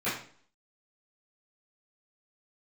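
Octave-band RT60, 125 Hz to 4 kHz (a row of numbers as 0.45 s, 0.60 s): 0.50 s, 0.55 s, 0.50 s, 0.50 s, 0.45 s, 0.45 s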